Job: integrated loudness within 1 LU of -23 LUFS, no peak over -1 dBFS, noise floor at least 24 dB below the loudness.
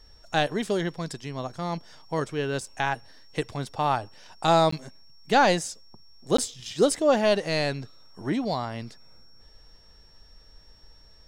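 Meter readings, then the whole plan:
dropouts 2; longest dropout 14 ms; steady tone 5500 Hz; tone level -56 dBFS; loudness -26.5 LUFS; peak -7.5 dBFS; loudness target -23.0 LUFS
-> interpolate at 4.71/6.37, 14 ms; notch 5500 Hz, Q 30; gain +3.5 dB

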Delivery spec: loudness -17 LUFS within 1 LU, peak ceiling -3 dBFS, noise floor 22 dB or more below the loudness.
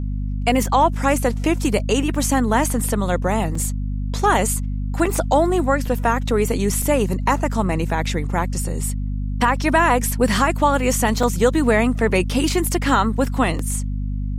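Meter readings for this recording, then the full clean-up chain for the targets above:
dropouts 7; longest dropout 3.7 ms; hum 50 Hz; harmonics up to 250 Hz; hum level -21 dBFS; loudness -20.0 LUFS; peak -4.0 dBFS; loudness target -17.0 LUFS
-> interpolate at 1.79/3.55/5.06/5.86/6.82/11.23/13.59, 3.7 ms; notches 50/100/150/200/250 Hz; gain +3 dB; limiter -3 dBFS

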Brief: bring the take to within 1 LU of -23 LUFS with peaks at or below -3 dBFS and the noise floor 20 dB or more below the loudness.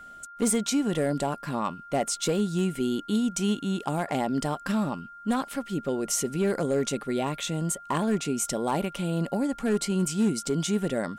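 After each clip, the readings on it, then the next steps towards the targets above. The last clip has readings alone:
clipped 0.6%; flat tops at -18.0 dBFS; steady tone 1400 Hz; tone level -43 dBFS; loudness -28.0 LUFS; peak -18.0 dBFS; loudness target -23.0 LUFS
-> clip repair -18 dBFS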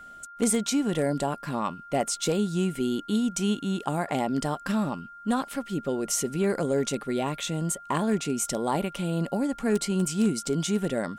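clipped 0.0%; steady tone 1400 Hz; tone level -43 dBFS
-> notch 1400 Hz, Q 30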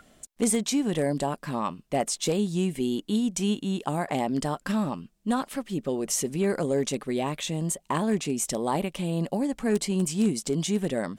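steady tone none; loudness -27.5 LUFS; peak -10.5 dBFS; loudness target -23.0 LUFS
-> gain +4.5 dB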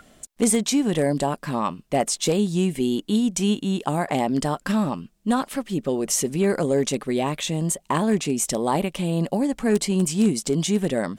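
loudness -23.0 LUFS; peak -6.0 dBFS; noise floor -60 dBFS

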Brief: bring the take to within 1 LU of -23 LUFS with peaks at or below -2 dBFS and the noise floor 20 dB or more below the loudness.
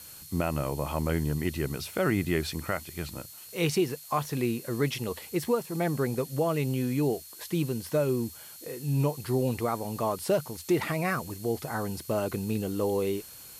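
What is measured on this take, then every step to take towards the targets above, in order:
steady tone 4300 Hz; tone level -55 dBFS; noise floor -47 dBFS; noise floor target -50 dBFS; loudness -30.0 LUFS; peak -15.0 dBFS; loudness target -23.0 LUFS
-> notch 4300 Hz, Q 30; denoiser 6 dB, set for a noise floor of -47 dBFS; gain +7 dB

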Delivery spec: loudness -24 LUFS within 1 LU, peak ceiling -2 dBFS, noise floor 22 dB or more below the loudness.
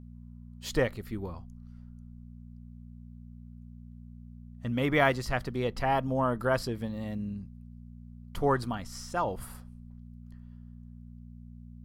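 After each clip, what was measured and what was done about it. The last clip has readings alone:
hum 60 Hz; harmonics up to 240 Hz; hum level -44 dBFS; loudness -31.0 LUFS; peak -9.5 dBFS; loudness target -24.0 LUFS
-> de-hum 60 Hz, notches 4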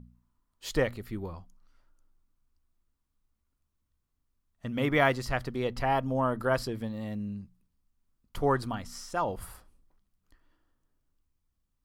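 hum none; loudness -30.5 LUFS; peak -9.5 dBFS; loudness target -24.0 LUFS
-> gain +6.5 dB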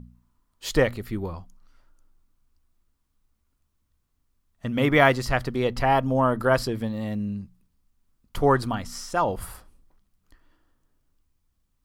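loudness -24.0 LUFS; peak -3.0 dBFS; noise floor -73 dBFS

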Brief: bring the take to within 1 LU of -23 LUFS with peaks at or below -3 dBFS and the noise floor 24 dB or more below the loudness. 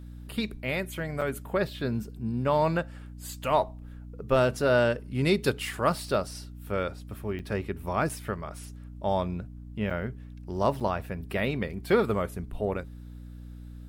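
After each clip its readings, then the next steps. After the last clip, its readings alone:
dropouts 5; longest dropout 6.0 ms; hum 60 Hz; harmonics up to 300 Hz; hum level -40 dBFS; loudness -29.5 LUFS; peak -10.0 dBFS; loudness target -23.0 LUFS
-> interpolate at 1.21/7.39/8.09/9.9/10.8, 6 ms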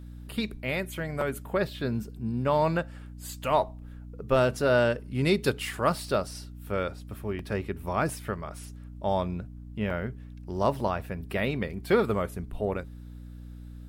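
dropouts 0; hum 60 Hz; harmonics up to 300 Hz; hum level -40 dBFS
-> de-hum 60 Hz, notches 5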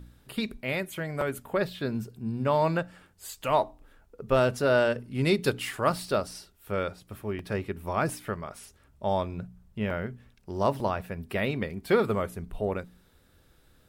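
hum none; loudness -29.5 LUFS; peak -10.0 dBFS; loudness target -23.0 LUFS
-> gain +6.5 dB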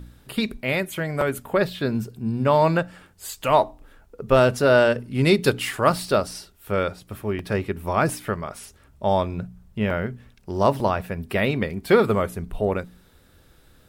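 loudness -23.0 LUFS; peak -3.5 dBFS; noise floor -55 dBFS

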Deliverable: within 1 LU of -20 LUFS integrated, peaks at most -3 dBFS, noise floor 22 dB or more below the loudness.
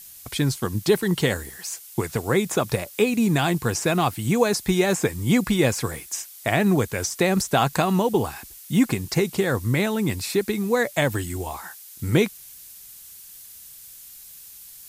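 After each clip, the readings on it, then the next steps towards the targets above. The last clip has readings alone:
noise floor -44 dBFS; noise floor target -45 dBFS; loudness -23.0 LUFS; peak -6.5 dBFS; loudness target -20.0 LUFS
-> denoiser 6 dB, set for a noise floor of -44 dBFS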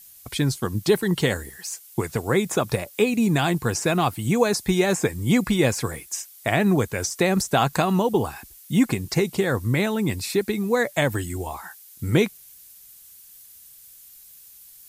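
noise floor -48 dBFS; loudness -23.0 LUFS; peak -6.5 dBFS; loudness target -20.0 LUFS
-> gain +3 dB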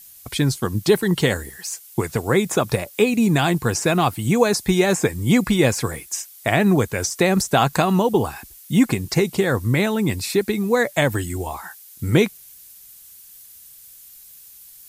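loudness -20.0 LUFS; peak -3.5 dBFS; noise floor -45 dBFS

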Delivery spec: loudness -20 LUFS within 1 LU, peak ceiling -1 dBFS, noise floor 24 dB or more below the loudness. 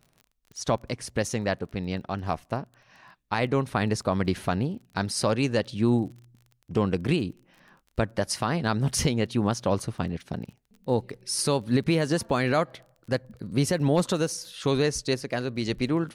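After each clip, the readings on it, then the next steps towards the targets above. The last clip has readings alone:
ticks 24/s; loudness -27.5 LUFS; peak -12.5 dBFS; loudness target -20.0 LUFS
-> de-click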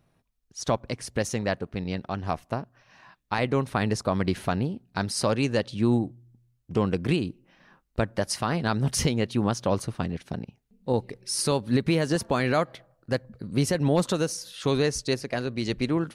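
ticks 0/s; loudness -27.5 LUFS; peak -12.0 dBFS; loudness target -20.0 LUFS
-> gain +7.5 dB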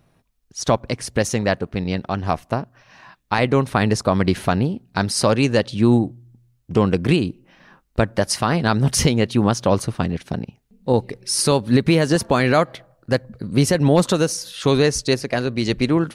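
loudness -20.0 LUFS; peak -4.5 dBFS; noise floor -63 dBFS

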